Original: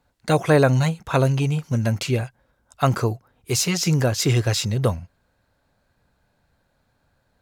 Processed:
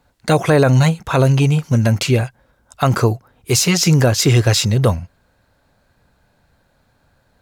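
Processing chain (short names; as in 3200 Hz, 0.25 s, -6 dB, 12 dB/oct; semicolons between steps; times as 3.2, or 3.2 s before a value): limiter -12 dBFS, peak gain reduction 7 dB; gain +7.5 dB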